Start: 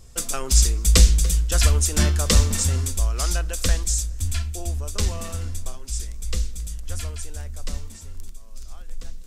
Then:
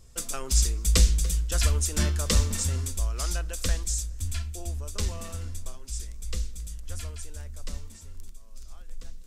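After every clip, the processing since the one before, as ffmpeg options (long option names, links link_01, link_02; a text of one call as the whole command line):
ffmpeg -i in.wav -af "bandreject=frequency=750:width=15,volume=-6dB" out.wav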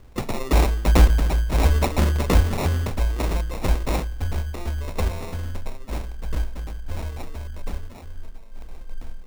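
ffmpeg -i in.wav -af "acrusher=samples=28:mix=1:aa=0.000001,volume=5.5dB" out.wav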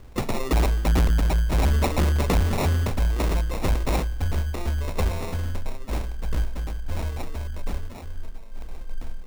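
ffmpeg -i in.wav -af "asoftclip=type=tanh:threshold=-18dB,volume=2.5dB" out.wav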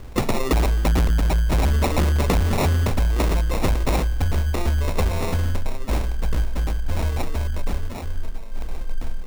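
ffmpeg -i in.wav -af "acompressor=threshold=-24dB:ratio=6,volume=7.5dB" out.wav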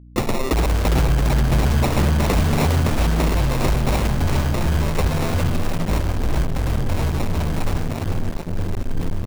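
ffmpeg -i in.wav -filter_complex "[0:a]asplit=6[link_01][link_02][link_03][link_04][link_05][link_06];[link_02]adelay=407,afreqshift=79,volume=-6.5dB[link_07];[link_03]adelay=814,afreqshift=158,volume=-14.2dB[link_08];[link_04]adelay=1221,afreqshift=237,volume=-22dB[link_09];[link_05]adelay=1628,afreqshift=316,volume=-29.7dB[link_10];[link_06]adelay=2035,afreqshift=395,volume=-37.5dB[link_11];[link_01][link_07][link_08][link_09][link_10][link_11]amix=inputs=6:normalize=0,acrusher=bits=3:mix=0:aa=0.5,aeval=exprs='val(0)+0.00794*(sin(2*PI*60*n/s)+sin(2*PI*2*60*n/s)/2+sin(2*PI*3*60*n/s)/3+sin(2*PI*4*60*n/s)/4+sin(2*PI*5*60*n/s)/5)':channel_layout=same" out.wav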